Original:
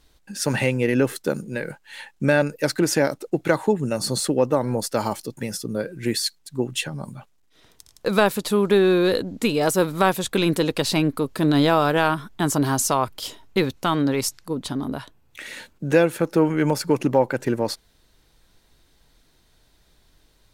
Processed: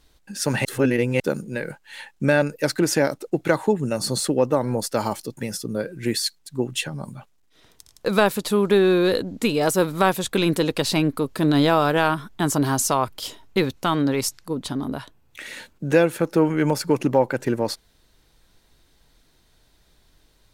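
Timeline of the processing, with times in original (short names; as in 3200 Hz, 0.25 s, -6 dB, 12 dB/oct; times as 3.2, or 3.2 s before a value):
0.65–1.2 reverse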